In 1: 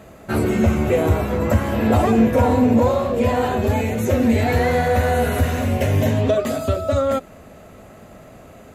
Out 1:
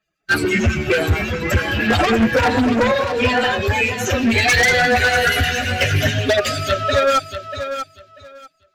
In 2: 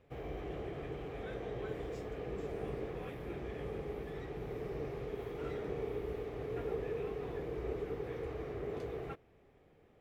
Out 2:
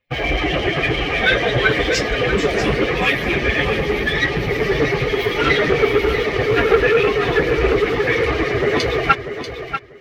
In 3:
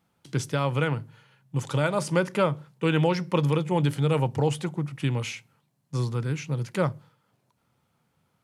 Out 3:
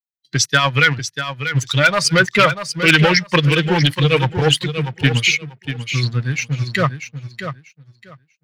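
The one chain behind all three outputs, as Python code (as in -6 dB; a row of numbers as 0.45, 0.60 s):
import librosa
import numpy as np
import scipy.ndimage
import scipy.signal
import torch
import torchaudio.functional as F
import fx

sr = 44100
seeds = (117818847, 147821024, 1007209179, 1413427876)

p1 = fx.bin_expand(x, sr, power=2.0)
p2 = fx.low_shelf(p1, sr, hz=370.0, db=-3.5)
p3 = fx.leveller(p2, sr, passes=2)
p4 = fx.band_shelf(p3, sr, hz=2900.0, db=12.0, octaves=2.4)
p5 = fx.harmonic_tremolo(p4, sr, hz=8.9, depth_pct=50, crossover_hz=2300.0)
p6 = 10.0 ** (-12.0 / 20.0) * (np.abs((p5 / 10.0 ** (-12.0 / 20.0) + 3.0) % 4.0 - 2.0) - 1.0)
p7 = p6 + fx.echo_feedback(p6, sr, ms=640, feedback_pct=18, wet_db=-9.5, dry=0)
p8 = fx.doppler_dist(p7, sr, depth_ms=0.12)
y = p8 * 10.0 ** (-18 / 20.0) / np.sqrt(np.mean(np.square(p8)))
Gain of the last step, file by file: +3.0, +25.5, +9.5 dB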